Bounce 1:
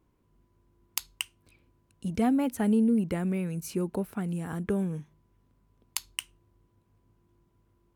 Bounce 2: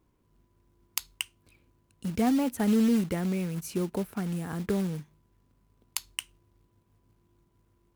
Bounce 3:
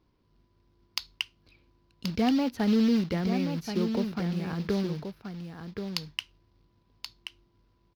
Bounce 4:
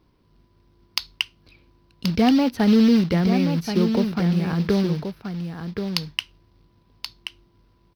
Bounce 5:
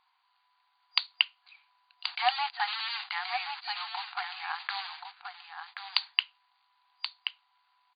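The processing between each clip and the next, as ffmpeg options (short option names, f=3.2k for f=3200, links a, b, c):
-af "acrusher=bits=4:mode=log:mix=0:aa=0.000001"
-filter_complex "[0:a]highshelf=f=6.3k:t=q:w=3:g=-10.5,asplit=2[a][b];[b]aecho=0:1:1079:0.422[c];[a][c]amix=inputs=2:normalize=0"
-af "equalizer=f=170:w=6.7:g=3,bandreject=f=6.9k:w=7.1,volume=7.5dB"
-af "afftfilt=real='re*between(b*sr/4096,720,4800)':imag='im*between(b*sr/4096,720,4800)':win_size=4096:overlap=0.75"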